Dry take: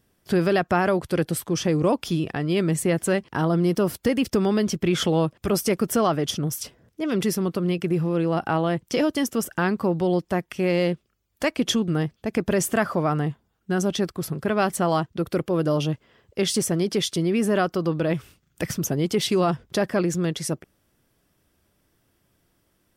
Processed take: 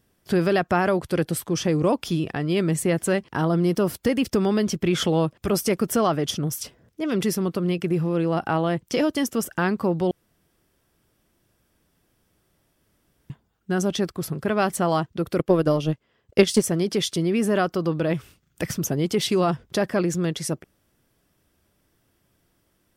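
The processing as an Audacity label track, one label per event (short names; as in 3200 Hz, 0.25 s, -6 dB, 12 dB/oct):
10.110000	13.300000	room tone
15.370000	16.640000	transient shaper attack +10 dB, sustain -9 dB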